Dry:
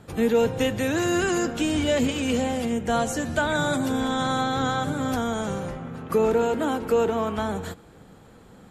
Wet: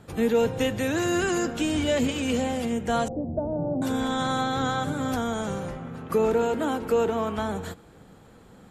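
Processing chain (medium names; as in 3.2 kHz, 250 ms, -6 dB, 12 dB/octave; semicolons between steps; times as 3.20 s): 3.08–3.82 s: steep low-pass 740 Hz 36 dB/octave; trim -1.5 dB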